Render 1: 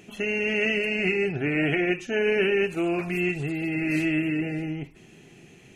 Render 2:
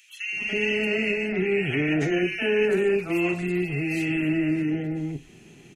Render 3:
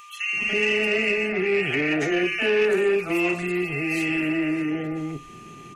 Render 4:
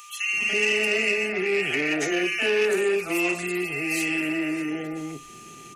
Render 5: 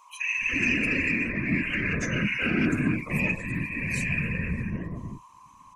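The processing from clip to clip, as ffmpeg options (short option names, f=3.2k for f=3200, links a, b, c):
-filter_complex "[0:a]acrossover=split=630|1900[a][b][c];[b]adelay=290[d];[a]adelay=330[e];[e][d][c]amix=inputs=3:normalize=0,volume=2dB"
-filter_complex "[0:a]acrossover=split=340|420|3200[a][b][c][d];[a]acompressor=threshold=-37dB:ratio=6[e];[e][b][c][d]amix=inputs=4:normalize=0,aeval=exprs='val(0)+0.00398*sin(2*PI*1200*n/s)':c=same,asoftclip=type=tanh:threshold=-16.5dB,volume=4.5dB"
-filter_complex "[0:a]bass=f=250:g=-5,treble=f=4k:g=11,acrossover=split=130|2900[a][b][c];[a]alimiter=level_in=24.5dB:limit=-24dB:level=0:latency=1,volume=-24.5dB[d];[d][b][c]amix=inputs=3:normalize=0,volume=-1.5dB"
-af "afreqshift=-170,afftdn=nr=16:nf=-32,afftfilt=real='hypot(re,im)*cos(2*PI*random(0))':imag='hypot(re,im)*sin(2*PI*random(1))':win_size=512:overlap=0.75,volume=4dB"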